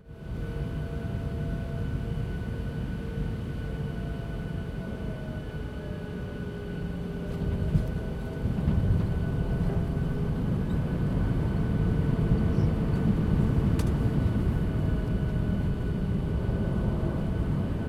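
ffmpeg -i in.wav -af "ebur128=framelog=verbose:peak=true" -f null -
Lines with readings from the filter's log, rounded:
Integrated loudness:
  I:         -29.6 LUFS
  Threshold: -39.6 LUFS
Loudness range:
  LRA:         8.4 LU
  Threshold: -49.4 LUFS
  LRA low:   -34.8 LUFS
  LRA high:  -26.4 LUFS
True peak:
  Peak:      -11.1 dBFS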